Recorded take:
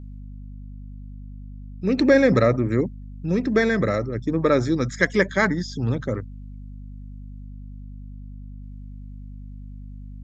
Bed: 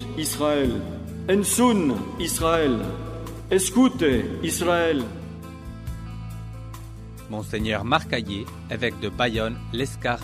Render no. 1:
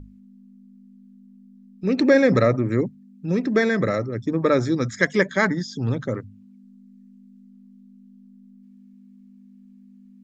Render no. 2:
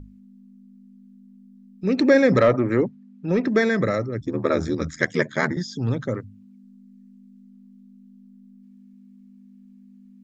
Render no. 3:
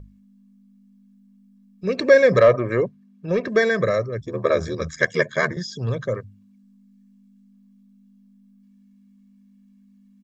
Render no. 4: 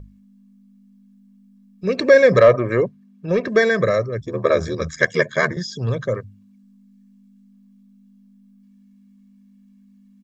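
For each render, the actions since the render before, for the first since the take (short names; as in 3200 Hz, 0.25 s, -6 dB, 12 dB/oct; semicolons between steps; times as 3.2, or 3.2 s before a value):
notches 50/100/150 Hz
2.38–3.48 overdrive pedal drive 15 dB, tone 1400 Hz, clips at -6 dBFS; 4.2–5.57 ring modulator 40 Hz
low shelf 130 Hz -5.5 dB; comb 1.8 ms, depth 70%
gain +2.5 dB; limiter -2 dBFS, peak gain reduction 1.5 dB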